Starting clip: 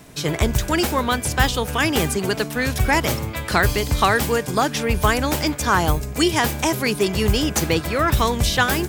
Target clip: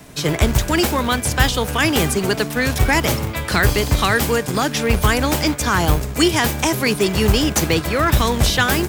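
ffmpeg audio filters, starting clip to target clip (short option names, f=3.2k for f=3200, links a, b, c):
-filter_complex "[0:a]acrossover=split=320|1400|2100[a][b][c][d];[a]acrusher=bits=2:mode=log:mix=0:aa=0.000001[e];[b]alimiter=limit=-17.5dB:level=0:latency=1[f];[e][f][c][d]amix=inputs=4:normalize=0,volume=3dB"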